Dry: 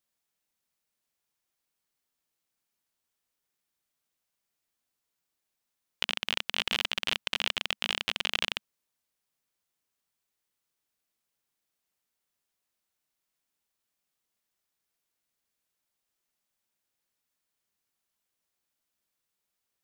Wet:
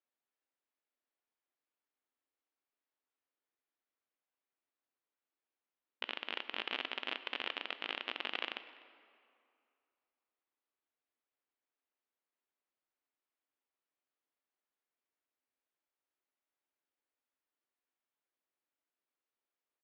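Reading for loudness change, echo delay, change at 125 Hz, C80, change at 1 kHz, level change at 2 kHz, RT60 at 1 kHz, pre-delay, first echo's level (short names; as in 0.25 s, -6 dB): -9.5 dB, 0.249 s, under -30 dB, 13.5 dB, -5.0 dB, -8.0 dB, 2.5 s, 13 ms, -22.0 dB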